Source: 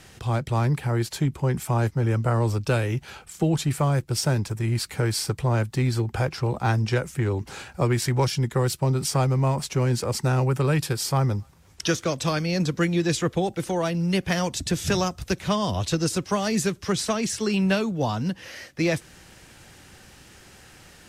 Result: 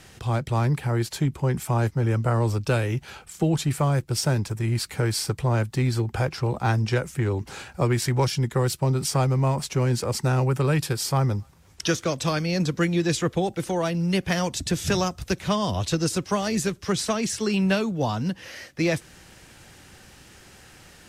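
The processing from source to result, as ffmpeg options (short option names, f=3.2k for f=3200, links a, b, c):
-filter_complex "[0:a]asettb=1/sr,asplit=3[a][b][c];[a]atrim=end=16.414[d];[b]atrim=start=16.41:end=16.88,asetpts=PTS-STARTPTS,afade=t=in:d=0.004:c=qsin,afade=t=out:st=0.466:d=0.004:c=qsin,tremolo=f=130:d=0.261[e];[c]atrim=start=16.876[f];[d][e]acrossfade=d=0.004:c1=hsin:c2=qsin[g];[g][f]acrossfade=d=0.004:c1=qsin:c2=hsin"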